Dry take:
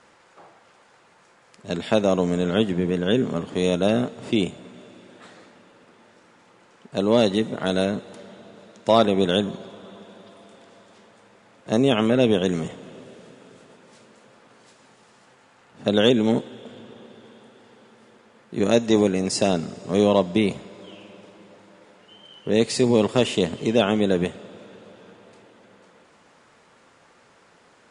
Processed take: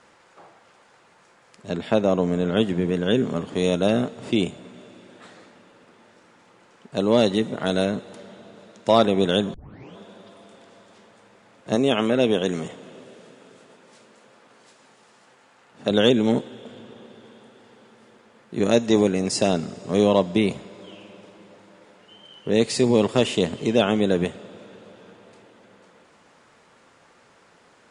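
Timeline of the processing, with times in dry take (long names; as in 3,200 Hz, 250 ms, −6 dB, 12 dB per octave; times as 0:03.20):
0:01.70–0:02.57: high-shelf EQ 3,300 Hz −8.5 dB
0:09.54: tape start 0.43 s
0:11.75–0:15.91: low-shelf EQ 130 Hz −10.5 dB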